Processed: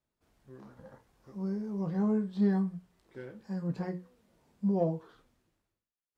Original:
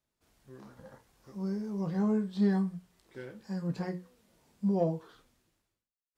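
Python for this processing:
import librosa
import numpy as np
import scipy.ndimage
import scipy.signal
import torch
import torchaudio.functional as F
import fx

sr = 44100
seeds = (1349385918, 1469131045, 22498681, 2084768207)

y = fx.high_shelf(x, sr, hz=2500.0, db=-8.0)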